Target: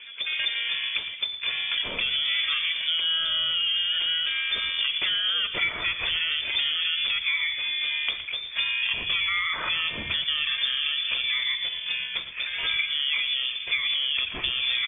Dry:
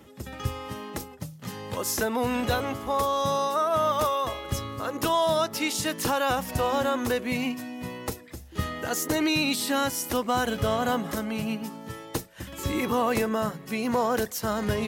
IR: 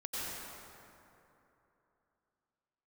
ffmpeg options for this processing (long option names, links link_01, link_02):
-filter_complex "[0:a]acrusher=bits=9:mode=log:mix=0:aa=0.000001,alimiter=limit=-19.5dB:level=0:latency=1:release=11,acontrast=66,equalizer=frequency=2100:width_type=o:width=0.63:gain=14,acompressor=threshold=-23dB:ratio=16,asplit=6[link_01][link_02][link_03][link_04][link_05][link_06];[link_02]adelay=117,afreqshift=100,volume=-13dB[link_07];[link_03]adelay=234,afreqshift=200,volume=-19.7dB[link_08];[link_04]adelay=351,afreqshift=300,volume=-26.5dB[link_09];[link_05]adelay=468,afreqshift=400,volume=-33.2dB[link_10];[link_06]adelay=585,afreqshift=500,volume=-40dB[link_11];[link_01][link_07][link_08][link_09][link_10][link_11]amix=inputs=6:normalize=0,asetrate=26222,aresample=44100,atempo=1.68179,bandreject=frequency=2800:width=25,lowpass=frequency=3100:width_type=q:width=0.5098,lowpass=frequency=3100:width_type=q:width=0.6013,lowpass=frequency=3100:width_type=q:width=0.9,lowpass=frequency=3100:width_type=q:width=2.563,afreqshift=-3600,asplit=2[link_12][link_13];[link_13]asubboost=boost=10.5:cutoff=200[link_14];[1:a]atrim=start_sample=2205,afade=type=out:start_time=0.21:duration=0.01,atrim=end_sample=9702,asetrate=66150,aresample=44100[link_15];[link_14][link_15]afir=irnorm=-1:irlink=0,volume=-10dB[link_16];[link_12][link_16]amix=inputs=2:normalize=0"